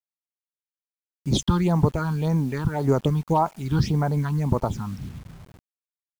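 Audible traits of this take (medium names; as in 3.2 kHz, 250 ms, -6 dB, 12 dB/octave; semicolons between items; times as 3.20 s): phasing stages 6, 1.8 Hz, lowest notch 540–3700 Hz; a quantiser's noise floor 8-bit, dither none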